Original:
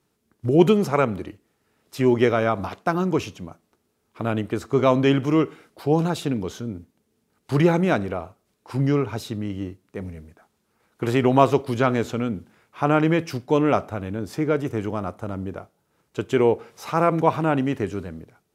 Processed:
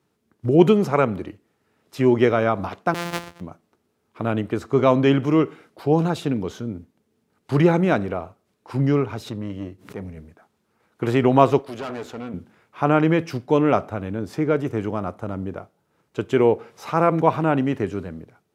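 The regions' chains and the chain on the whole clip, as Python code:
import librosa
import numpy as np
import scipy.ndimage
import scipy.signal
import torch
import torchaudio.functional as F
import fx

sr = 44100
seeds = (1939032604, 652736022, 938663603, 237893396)

y = fx.chain(x, sr, fx.sample_sort(block=256),
    fx.low_shelf(hz=450.0, db=-10.0),
    fx.doppler_dist(depth_ms=0.9), at=(2.94, 3.41))
y = fx.chain(y, sr, fx.tube_stage(drive_db=23.0, bias=0.45),
    fx.pre_swell(db_per_s=150.0), at=(9.06, 10.17))
y = fx.chain(y, sr, fx.highpass(hz=310.0, slope=6),
    fx.tube_stage(drive_db=28.0, bias=0.6), at=(11.59, 12.34))
y = scipy.signal.sosfilt(scipy.signal.butter(2, 72.0, 'highpass', fs=sr, output='sos'), y)
y = fx.high_shelf(y, sr, hz=4300.0, db=-7.0)
y = F.gain(torch.from_numpy(y), 1.5).numpy()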